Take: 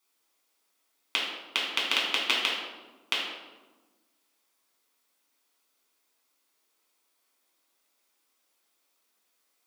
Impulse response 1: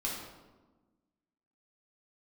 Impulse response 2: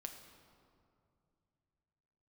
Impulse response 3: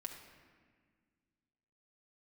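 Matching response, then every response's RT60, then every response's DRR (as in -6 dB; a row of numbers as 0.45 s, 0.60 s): 1; 1.2 s, 2.5 s, 1.7 s; -5.0 dB, 4.0 dB, 0.0 dB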